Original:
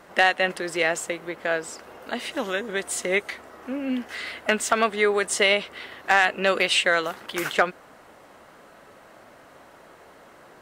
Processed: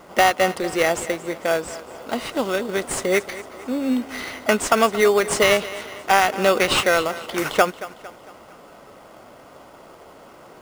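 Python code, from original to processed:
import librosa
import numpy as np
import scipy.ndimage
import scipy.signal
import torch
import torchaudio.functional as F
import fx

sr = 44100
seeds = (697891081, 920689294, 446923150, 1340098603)

p1 = fx.notch(x, sr, hz=1700.0, q=5.7)
p2 = fx.sample_hold(p1, sr, seeds[0], rate_hz=4000.0, jitter_pct=0)
p3 = p1 + (p2 * 10.0 ** (-3.0 / 20.0))
p4 = fx.echo_thinned(p3, sr, ms=227, feedback_pct=47, hz=180.0, wet_db=-16.0)
y = p4 * 10.0 ** (1.0 / 20.0)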